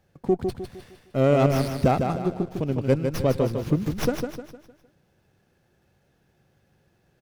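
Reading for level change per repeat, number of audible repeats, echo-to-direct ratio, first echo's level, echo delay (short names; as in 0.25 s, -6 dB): -7.5 dB, 4, -5.0 dB, -6.0 dB, 0.153 s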